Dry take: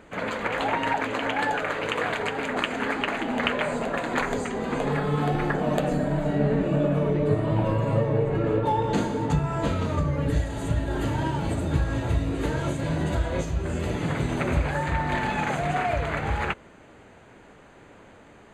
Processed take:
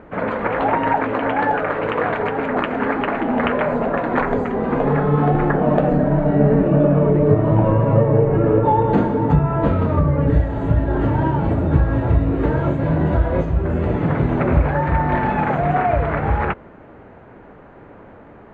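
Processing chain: LPF 1400 Hz 12 dB/oct; gain +8.5 dB

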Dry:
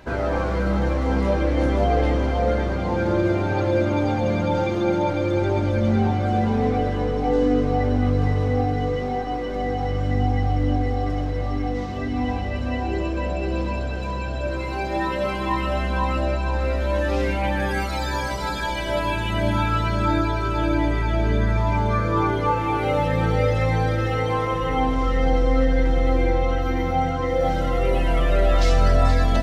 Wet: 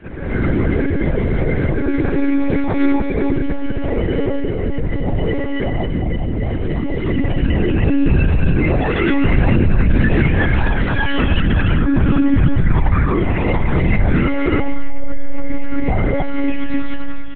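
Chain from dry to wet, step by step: LPF 2500 Hz 12 dB/oct; band shelf 810 Hz -11.5 dB; notch 620 Hz, Q 12; comb 2.4 ms, depth 74%; compressor 2.5:1, threshold -21 dBFS, peak gain reduction 8 dB; limiter -18.5 dBFS, peak gain reduction 6 dB; AGC gain up to 14.5 dB; plain phase-vocoder stretch 0.59×; feedback echo 88 ms, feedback 26%, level -16.5 dB; monotone LPC vocoder at 8 kHz 280 Hz

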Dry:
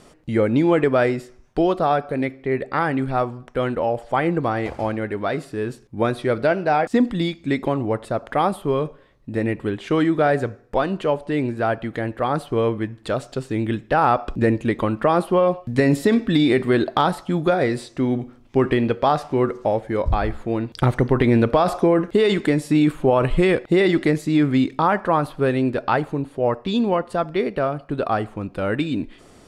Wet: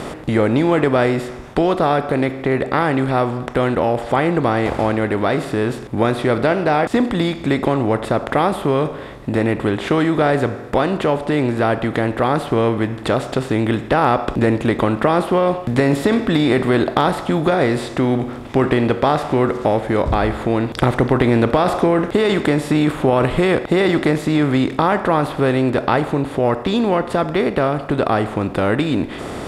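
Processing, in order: per-bin compression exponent 0.6; HPF 41 Hz; in parallel at +2 dB: compressor, threshold -22 dBFS, peak gain reduction 12.5 dB; on the sum: gain -4 dB

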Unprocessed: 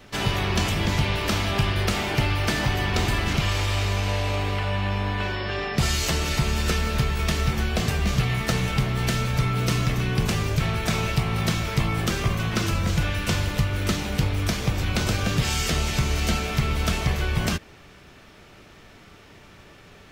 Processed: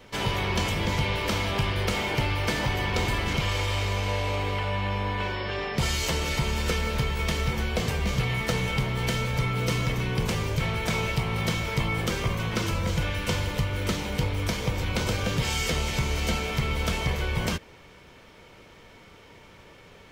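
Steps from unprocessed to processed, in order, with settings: small resonant body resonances 500/940/2200/3100 Hz, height 9 dB, ringing for 40 ms; in parallel at -9 dB: soft clip -18 dBFS, distortion -15 dB; on the sum: gain -6 dB

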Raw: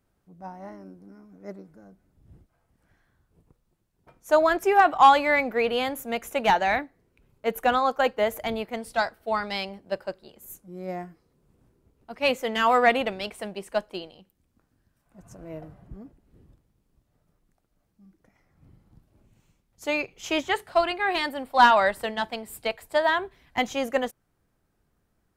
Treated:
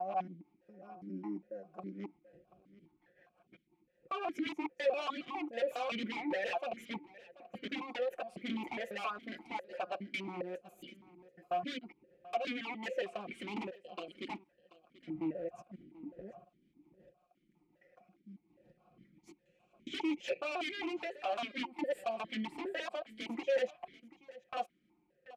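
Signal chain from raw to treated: slices in reverse order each 0.137 s, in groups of 5; comb 5.6 ms, depth 81%; compressor 10:1, threshold -27 dBFS, peak gain reduction 17.5 dB; rotary speaker horn 5.5 Hz, later 0.85 Hz, at 22.24; wavefolder -33 dBFS; echo 0.734 s -19 dB; vowel sequencer 4.9 Hz; gain +12.5 dB

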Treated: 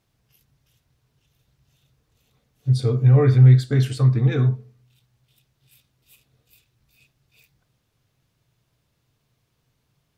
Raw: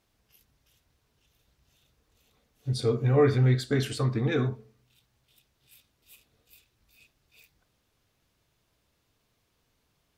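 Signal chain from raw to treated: bell 130 Hz +11.5 dB 0.7 oct

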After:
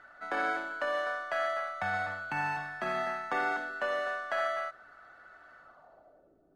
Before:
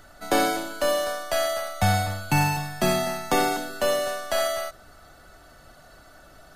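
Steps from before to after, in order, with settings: limiter -15.5 dBFS, peak gain reduction 7.5 dB; RIAA curve recording; low-pass sweep 1600 Hz -> 350 Hz, 5.56–6.38; gain -7.5 dB

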